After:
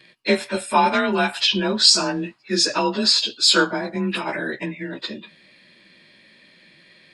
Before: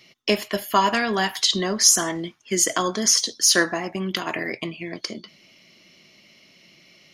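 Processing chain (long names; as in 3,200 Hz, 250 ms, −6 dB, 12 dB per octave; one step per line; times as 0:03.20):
partials spread apart or drawn together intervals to 92%
level +4 dB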